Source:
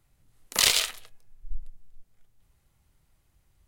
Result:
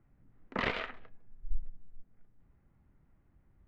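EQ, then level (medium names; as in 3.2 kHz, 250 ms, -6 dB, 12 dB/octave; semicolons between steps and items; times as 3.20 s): four-pole ladder low-pass 2.3 kHz, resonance 30%; tilt shelf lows +3.5 dB; peaking EQ 240 Hz +9 dB 1.1 oct; +3.0 dB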